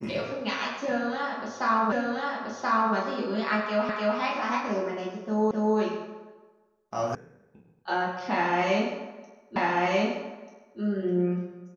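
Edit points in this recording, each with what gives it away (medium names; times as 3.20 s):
1.92 s: repeat of the last 1.03 s
3.89 s: repeat of the last 0.3 s
5.51 s: repeat of the last 0.26 s
7.15 s: sound stops dead
9.56 s: repeat of the last 1.24 s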